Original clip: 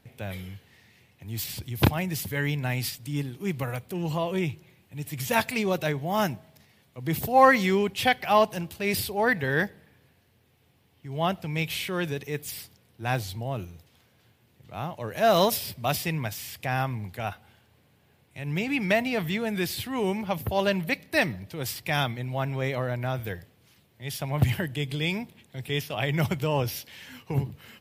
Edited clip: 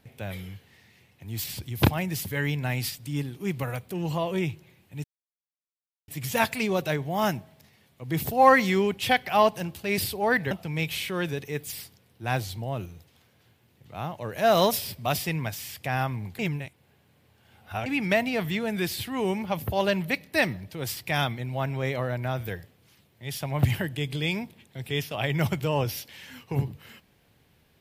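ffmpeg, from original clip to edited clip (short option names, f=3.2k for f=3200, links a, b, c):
-filter_complex "[0:a]asplit=5[a][b][c][d][e];[a]atrim=end=5.04,asetpts=PTS-STARTPTS,afade=t=out:st=5.036:d=0.004:c=hsin,apad=pad_dur=1.04[f];[b]atrim=start=5.04:end=9.472,asetpts=PTS-STARTPTS,afade=t=in:d=0.004:c=hsin[g];[c]atrim=start=11.298:end=17.182[h];[d]atrim=start=17.178:end=18.652,asetpts=PTS-STARTPTS,areverse[i];[e]atrim=start=18.648[j];[f][g]concat=n=2:v=0:a=1[k];[k][h]acrossfade=d=0.004:c1=hsin:c2=hsin[l];[l][i]acrossfade=d=0.004:c1=hsin:c2=hsin[m];[m][j]acrossfade=d=0.004:c1=hsin:c2=hsin"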